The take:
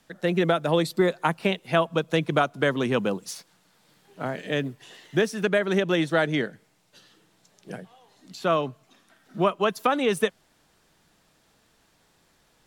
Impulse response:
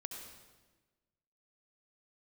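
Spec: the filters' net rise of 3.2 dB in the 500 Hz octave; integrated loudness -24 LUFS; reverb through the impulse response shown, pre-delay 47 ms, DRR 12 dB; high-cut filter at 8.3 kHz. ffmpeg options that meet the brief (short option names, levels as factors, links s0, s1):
-filter_complex "[0:a]lowpass=8300,equalizer=f=500:t=o:g=4,asplit=2[s0][s1];[1:a]atrim=start_sample=2205,adelay=47[s2];[s1][s2]afir=irnorm=-1:irlink=0,volume=0.316[s3];[s0][s3]amix=inputs=2:normalize=0,volume=0.891"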